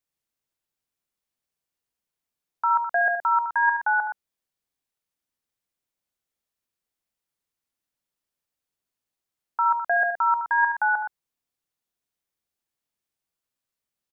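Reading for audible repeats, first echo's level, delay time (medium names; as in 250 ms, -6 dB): 2, -9.0 dB, 71 ms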